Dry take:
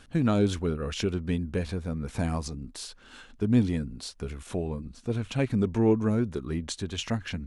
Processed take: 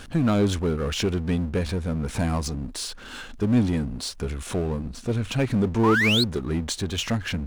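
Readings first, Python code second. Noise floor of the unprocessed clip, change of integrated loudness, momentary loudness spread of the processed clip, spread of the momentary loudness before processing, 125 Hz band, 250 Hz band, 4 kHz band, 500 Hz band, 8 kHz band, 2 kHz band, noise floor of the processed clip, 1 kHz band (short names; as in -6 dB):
-53 dBFS, +4.0 dB, 11 LU, 14 LU, +4.0 dB, +3.0 dB, +10.5 dB, +3.0 dB, +7.0 dB, +12.0 dB, -41 dBFS, +7.5 dB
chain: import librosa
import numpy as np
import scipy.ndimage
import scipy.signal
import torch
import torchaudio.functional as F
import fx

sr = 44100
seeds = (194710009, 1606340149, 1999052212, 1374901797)

y = fx.spec_paint(x, sr, seeds[0], shape='rise', start_s=5.83, length_s=0.41, low_hz=910.0, high_hz=4500.0, level_db=-25.0)
y = fx.power_curve(y, sr, exponent=0.7)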